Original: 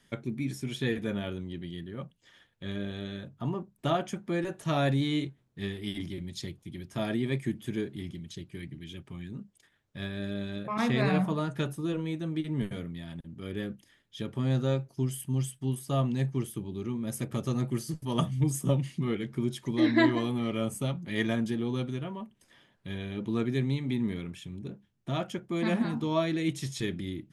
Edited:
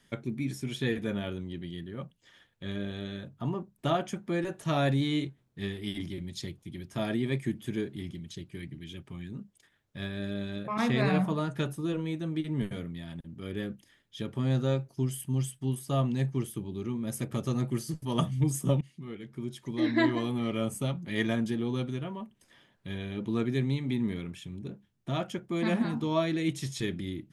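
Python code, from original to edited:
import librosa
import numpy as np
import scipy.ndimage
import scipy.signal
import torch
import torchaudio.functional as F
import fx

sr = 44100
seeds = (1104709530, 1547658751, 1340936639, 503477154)

y = fx.edit(x, sr, fx.fade_in_from(start_s=18.81, length_s=1.66, floor_db=-17.0), tone=tone)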